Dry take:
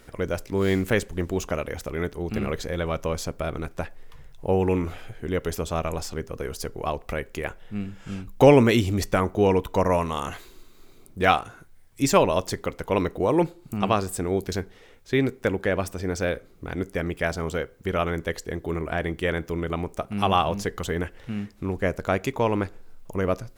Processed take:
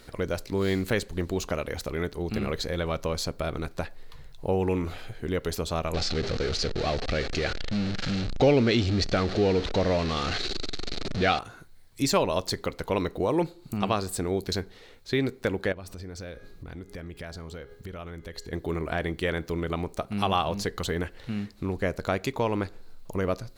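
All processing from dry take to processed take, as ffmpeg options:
-filter_complex "[0:a]asettb=1/sr,asplit=3[s0][s1][s2];[s0]atrim=end=5.944[s3];[s1]atrim=start=5.94:end=11.39,asetpts=PTS-STARTPTS,afade=t=in:d=0.004:c=qsin,afade=t=out:st=5.446:d=0.004:c=qsin,aeval=exprs='val(0)+0.5*0.0596*sgn(val(0))':c=same,lowpass=f=5900:w=0.5412,lowpass=f=5900:w=1.3066,equalizer=f=990:t=o:w=0.3:g=-12[s4];[s2]atrim=start=11.386[s5];[s3][s4]acrossfade=d=0.004:c1=hsin:c2=qsin[s6];[s6][s5]acrossfade=d=0.004:c1=qsin:c2=hsin,asettb=1/sr,asplit=3[s7][s8][s9];[s7]atrim=end=15.724[s10];[s8]atrim=start=15.72:end=18.53,asetpts=PTS-STARTPTS,afade=t=in:d=0.004:c=qsin,afade=t=out:st=2.806:d=0.004:c=qsin,lowshelf=f=110:g=8.5,bandreject=f=412.7:t=h:w=4,bandreject=f=825.4:t=h:w=4,bandreject=f=1238.1:t=h:w=4,bandreject=f=1650.8:t=h:w=4,bandreject=f=2063.5:t=h:w=4,bandreject=f=2476.2:t=h:w=4,bandreject=f=2888.9:t=h:w=4,bandreject=f=3301.6:t=h:w=4,bandreject=f=3714.3:t=h:w=4,bandreject=f=4127:t=h:w=4,bandreject=f=4539.7:t=h:w=4,bandreject=f=4952.4:t=h:w=4,bandreject=f=5365.1:t=h:w=4,bandreject=f=5777.8:t=h:w=4,bandreject=f=6190.5:t=h:w=4,bandreject=f=6603.2:t=h:w=4,bandreject=f=7015.9:t=h:w=4,acompressor=threshold=0.0126:ratio=4:attack=3.2:release=140:knee=1:detection=peak[s11];[s9]atrim=start=18.526[s12];[s10][s11]acrossfade=d=0.004:c1=hsin:c2=qsin[s13];[s13][s12]acrossfade=d=0.004:c1=qsin:c2=hsin,equalizer=f=4200:w=3.9:g=11,acompressor=threshold=0.0398:ratio=1.5"

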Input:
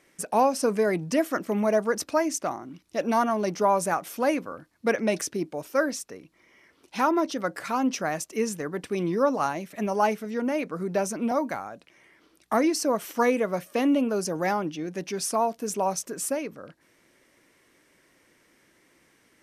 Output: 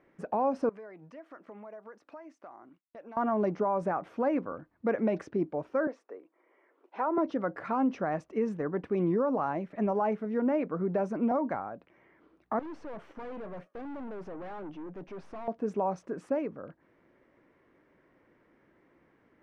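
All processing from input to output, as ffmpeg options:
-filter_complex "[0:a]asettb=1/sr,asplit=3[s0][s1][s2];[s0]atrim=end=0.694[s3];[s1]atrim=start=0.69:end=3.17,asetpts=PTS-STARTPTS,afade=t=in:d=0.004:c=qsin,afade=t=out:st=2.476:d=0.004:c=qsin,highpass=f=1000:p=1,agate=range=0.0224:threshold=0.00355:ratio=3:release=100:detection=peak,acompressor=threshold=0.00562:ratio=4:attack=3.2:release=140:knee=1:detection=peak[s4];[s2]atrim=start=3.166[s5];[s3][s4]acrossfade=d=0.004:c1=hsin:c2=qsin[s6];[s6][s5]acrossfade=d=0.004:c1=qsin:c2=hsin,asettb=1/sr,asplit=3[s7][s8][s9];[s7]atrim=end=5.874[s10];[s8]atrim=start=5.87:end=7.18,asetpts=PTS-STARTPTS,afade=t=in:d=0.004:c=qsin,afade=t=out:st=1.306:d=0.004:c=qsin,highpass=f=360:w=0.5412,highpass=f=360:w=1.3066,highshelf=f=2400:g=-10.5[s11];[s9]atrim=start=7.176[s12];[s10][s11]acrossfade=d=0.004:c1=hsin:c2=qsin[s13];[s13][s12]acrossfade=d=0.004:c1=qsin:c2=hsin,asettb=1/sr,asplit=3[s14][s15][s16];[s14]atrim=end=12.594[s17];[s15]atrim=start=12.59:end=15.48,asetpts=PTS-STARTPTS,afade=t=in:d=0.004:c=qsin,afade=t=out:st=2.886:d=0.004:c=qsin,highpass=f=180:p=1,agate=range=0.0224:threshold=0.00631:ratio=3:release=100:detection=peak,aeval=exprs='(tanh(89.1*val(0)+0.35)-tanh(0.35))/89.1':c=same[s18];[s16]atrim=start=15.476[s19];[s17][s18]acrossfade=d=0.004:c1=hsin:c2=qsin[s20];[s20][s19]acrossfade=d=0.004:c1=qsin:c2=hsin,lowpass=1300,alimiter=limit=0.1:level=0:latency=1:release=74"

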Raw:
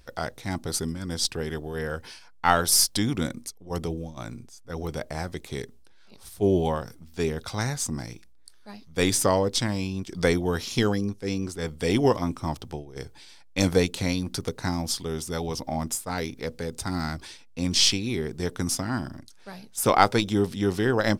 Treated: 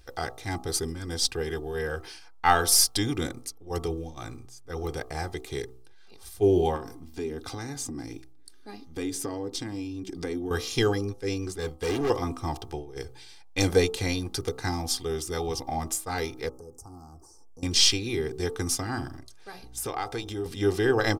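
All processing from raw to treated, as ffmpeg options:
-filter_complex "[0:a]asettb=1/sr,asplit=3[s0][s1][s2];[s0]atrim=end=6.764[s3];[s1]atrim=start=6.76:end=10.51,asetpts=PTS-STARTPTS,afade=t=in:d=0.004:c=qsin,afade=t=out:st=3.746:d=0.004:c=qsin,equalizer=f=270:w=1.8:g=14,acompressor=threshold=0.0251:ratio=3:attack=3.2:release=140:knee=1:detection=peak[s4];[s2]atrim=start=10.506[s5];[s3][s4]acrossfade=d=0.004:c1=hsin:c2=qsin[s6];[s6][s5]acrossfade=d=0.004:c1=qsin:c2=hsin,asettb=1/sr,asplit=3[s7][s8][s9];[s7]atrim=end=11.584[s10];[s8]atrim=start=11.58:end=12.1,asetpts=PTS-STARTPTS,afade=t=in:d=0.004:c=qsin,afade=t=out:st=0.516:d=0.004:c=qsin,agate=range=0.0224:threshold=0.0141:ratio=3:release=100:detection=peak,volume=17.8,asoftclip=hard,volume=0.0562[s11];[s9]atrim=start=12.096[s12];[s10][s11]acrossfade=d=0.004:c1=hsin:c2=qsin[s13];[s13][s12]acrossfade=d=0.004:c1=qsin:c2=hsin,asettb=1/sr,asplit=3[s14][s15][s16];[s14]atrim=end=16.494[s17];[s15]atrim=start=16.49:end=17.63,asetpts=PTS-STARTPTS,afade=t=in:d=0.004:c=qsin,afade=t=out:st=1.136:d=0.004:c=qsin,acompressor=threshold=0.00447:ratio=2.5:attack=3.2:release=140:knee=1:detection=peak,asuperstop=centerf=2600:order=12:qfactor=0.61[s18];[s16]atrim=start=17.626[s19];[s17][s18]acrossfade=d=0.004:c1=hsin:c2=qsin[s20];[s20][s19]acrossfade=d=0.004:c1=qsin:c2=hsin,asettb=1/sr,asplit=3[s21][s22][s23];[s21]atrim=end=19.634[s24];[s22]atrim=start=19.63:end=20.46,asetpts=PTS-STARTPTS,afade=t=in:d=0.004:c=qsin,afade=t=out:st=0.826:d=0.004:c=qsin,aeval=exprs='val(0)+0.00447*(sin(2*PI*60*n/s)+sin(2*PI*2*60*n/s)/2+sin(2*PI*3*60*n/s)/3+sin(2*PI*4*60*n/s)/4+sin(2*PI*5*60*n/s)/5)':c=same,acompressor=threshold=0.0282:ratio=3:attack=3.2:release=140:knee=1:detection=peak[s25];[s23]atrim=start=20.456[s26];[s24][s25]acrossfade=d=0.004:c1=hsin:c2=qsin[s27];[s27][s26]acrossfade=d=0.004:c1=qsin:c2=hsin,aecho=1:1:2.5:0.64,bandreject=f=63.35:t=h:w=4,bandreject=f=126.7:t=h:w=4,bandreject=f=190.05:t=h:w=4,bandreject=f=253.4:t=h:w=4,bandreject=f=316.75:t=h:w=4,bandreject=f=380.1:t=h:w=4,bandreject=f=443.45:t=h:w=4,bandreject=f=506.8:t=h:w=4,bandreject=f=570.15:t=h:w=4,bandreject=f=633.5:t=h:w=4,bandreject=f=696.85:t=h:w=4,bandreject=f=760.2:t=h:w=4,bandreject=f=823.55:t=h:w=4,bandreject=f=886.9:t=h:w=4,bandreject=f=950.25:t=h:w=4,bandreject=f=1013.6:t=h:w=4,bandreject=f=1076.95:t=h:w=4,bandreject=f=1140.3:t=h:w=4,bandreject=f=1203.65:t=h:w=4,bandreject=f=1267:t=h:w=4,bandreject=f=1330.35:t=h:w=4,volume=0.841"

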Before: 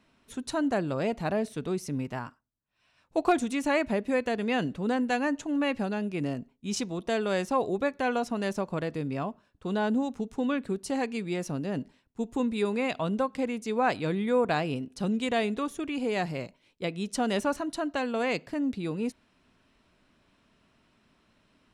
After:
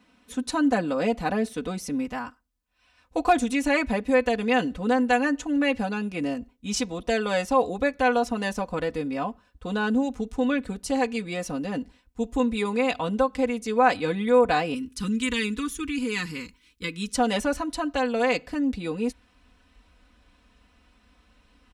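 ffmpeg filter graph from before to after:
-filter_complex "[0:a]asettb=1/sr,asplit=3[s0][s1][s2];[s0]atrim=end=14.744[s3];[s1]atrim=start=14.74:end=17.13,asetpts=PTS-STARTPTS,afade=t=in:d=0.004:c=qsin,afade=t=out:st=2.386:d=0.004:c=qsin,asuperstop=centerf=650:order=4:qfactor=0.97,highshelf=f=6100:g=7.5[s4];[s2]atrim=start=17.126[s5];[s3][s4]acrossfade=d=0.004:c1=hsin:c2=qsin[s6];[s6][s5]acrossfade=d=0.004:c1=qsin:c2=hsin,asubboost=boost=8.5:cutoff=62,highpass=46,aecho=1:1:4:0.88,volume=1.33"

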